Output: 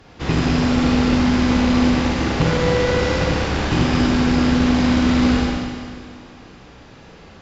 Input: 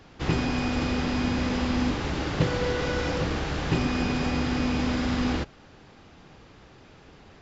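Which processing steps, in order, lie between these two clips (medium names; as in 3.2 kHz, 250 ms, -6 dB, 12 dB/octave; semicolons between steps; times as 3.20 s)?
Schroeder reverb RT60 2 s, combs from 33 ms, DRR -3 dB; Chebyshev shaper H 2 -15 dB, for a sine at -9 dBFS; trim +3.5 dB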